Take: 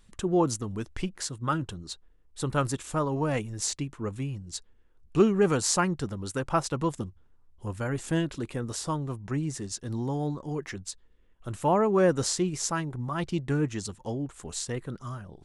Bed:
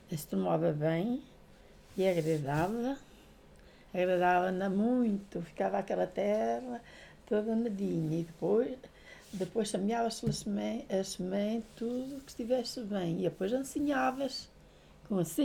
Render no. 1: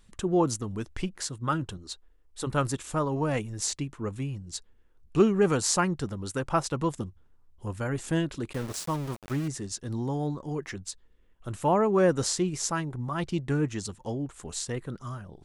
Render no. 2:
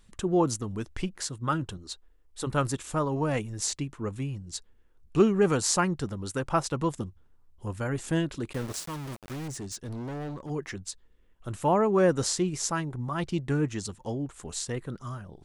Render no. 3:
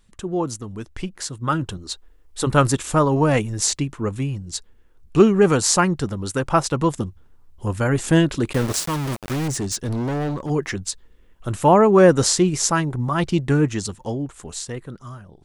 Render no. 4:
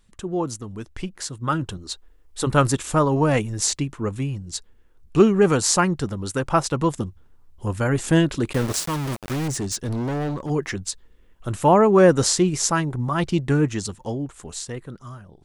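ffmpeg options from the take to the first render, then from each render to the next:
-filter_complex "[0:a]asettb=1/sr,asplit=3[a][b][c];[a]atrim=end=1.774[d];[b]atrim=start=1.77:end=2.47,asetpts=PTS-STARTPTS,afade=t=in:d=0.004:c=qsin,afade=t=out:st=0.696:d=0.004:c=qsin,equalizer=f=140:w=1.9:g=-14.5[e];[c]atrim=start=2.466[f];[d][e]acrossfade=d=0.004:c1=hsin:c2=qsin[g];[g][f]acrossfade=d=0.004:c1=qsin:c2=hsin,asettb=1/sr,asplit=3[h][i][j];[h]atrim=end=8.534[k];[i]atrim=start=8.53:end=9.48,asetpts=PTS-STARTPTS,afade=t=in:d=0.004:c=qsin,afade=t=out:st=0.946:d=0.004:c=qsin,aeval=exprs='val(0)*gte(abs(val(0)),0.0158)':c=same[l];[j]atrim=start=9.476[m];[k][l]acrossfade=d=0.004:c1=hsin:c2=qsin[n];[n][m]acrossfade=d=0.004:c1=qsin:c2=hsin"
-filter_complex "[0:a]asettb=1/sr,asplit=3[a][b][c];[a]atrim=end=8.804[d];[b]atrim=start=8.8:end=10.5,asetpts=PTS-STARTPTS,afade=t=in:d=0.004:c=qsin,afade=t=out:st=1.696:d=0.004:c=qsin,asoftclip=type=hard:threshold=-33.5dB[e];[c]atrim=start=10.496[f];[d][e]acrossfade=d=0.004:c1=hsin:c2=qsin[g];[g][f]acrossfade=d=0.004:c1=qsin:c2=hsin"
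-af "dynaudnorm=f=250:g=13:m=13.5dB"
-af "volume=-1.5dB"

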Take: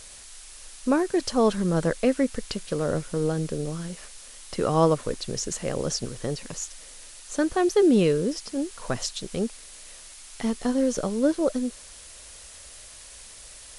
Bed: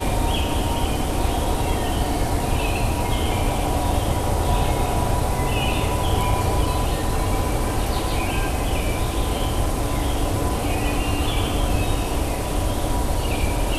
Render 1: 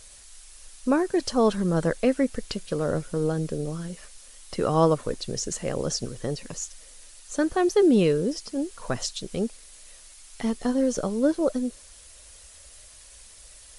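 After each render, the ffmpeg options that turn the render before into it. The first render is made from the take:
-af "afftdn=nr=6:nf=-46"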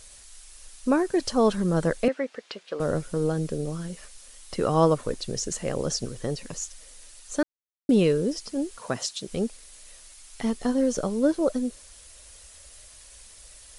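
-filter_complex "[0:a]asettb=1/sr,asplit=3[a][b][c];[a]atrim=end=2.084[d];[b]atrim=start=2.08:end=2.8,asetpts=PTS-STARTPTS,afade=t=in:d=0.004:c=qsin,afade=t=out:st=0.716:d=0.004:c=qsin,highpass=470,lowpass=3.5k[e];[c]atrim=start=2.796[f];[d][e]acrossfade=d=0.004:c1=hsin:c2=qsin[g];[g][f]acrossfade=d=0.004:c1=qsin:c2=hsin,asettb=1/sr,asplit=3[h][i][j];[h]atrim=end=8.784[k];[i]atrim=start=8.78:end=9.28,asetpts=PTS-STARTPTS,afade=t=in:d=0.004:c=qsin,afade=t=out:st=0.496:d=0.004:c=qsin,highpass=130[l];[j]atrim=start=9.276[m];[k][l]acrossfade=d=0.004:c1=hsin:c2=qsin[n];[n][m]acrossfade=d=0.004:c1=qsin:c2=hsin,asplit=3[o][p][q];[o]atrim=end=7.43,asetpts=PTS-STARTPTS,afade=t=out:st=7.426:d=0.004:c=hsin[r];[p]atrim=start=7.43:end=7.89,asetpts=PTS-STARTPTS,volume=0[s];[q]atrim=start=7.89,asetpts=PTS-STARTPTS,afade=t=in:d=0.004:c=hsin[t];[r][s][t]concat=n=3:v=0:a=1"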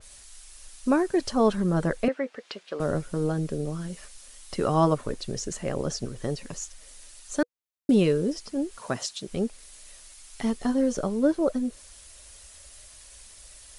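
-af "bandreject=f=490:w=12,adynamicequalizer=threshold=0.00447:dfrequency=3100:dqfactor=0.7:tfrequency=3100:tqfactor=0.7:attack=5:release=100:ratio=0.375:range=3:mode=cutabove:tftype=highshelf"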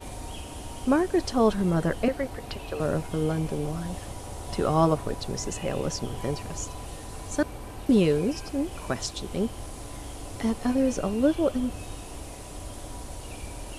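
-filter_complex "[1:a]volume=-17dB[a];[0:a][a]amix=inputs=2:normalize=0"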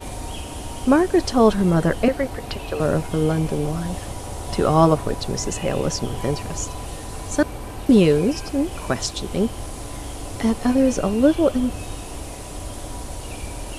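-af "volume=6.5dB"

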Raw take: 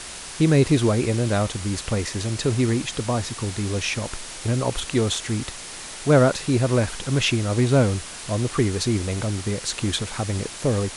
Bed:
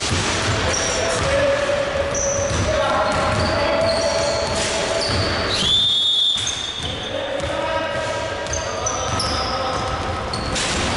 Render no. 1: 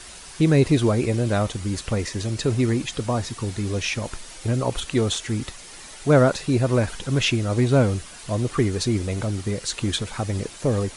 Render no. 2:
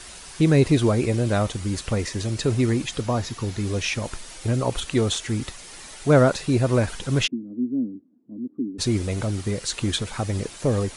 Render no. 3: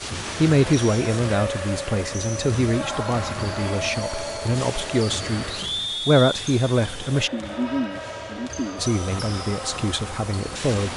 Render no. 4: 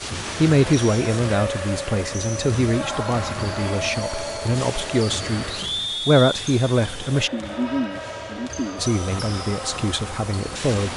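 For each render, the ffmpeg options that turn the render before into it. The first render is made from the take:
-af "afftdn=nr=8:nf=-37"
-filter_complex "[0:a]asettb=1/sr,asplit=3[a][b][c];[a]atrim=end=3.014[d];[b]atrim=start=3.01:end=3.6,asetpts=PTS-STARTPTS,afade=t=in:d=0.004:c=qsin,afade=t=out:st=0.586:d=0.004:c=qsin,equalizer=f=8.6k:w=6.5:g=-12.5[e];[c]atrim=start=3.596[f];[d][e]acrossfade=d=0.004:c1=hsin:c2=qsin[g];[g][f]acrossfade=d=0.004:c1=qsin:c2=hsin,asplit=3[h][i][j];[h]afade=t=out:st=7.26:d=0.02[k];[i]asuperpass=centerf=260:order=4:qfactor=3.2,afade=t=in:st=7.26:d=0.02,afade=t=out:st=8.78:d=0.02[l];[j]afade=t=in:st=8.78:d=0.02[m];[k][l][m]amix=inputs=3:normalize=0"
-filter_complex "[1:a]volume=-10.5dB[a];[0:a][a]amix=inputs=2:normalize=0"
-af "volume=1dB"

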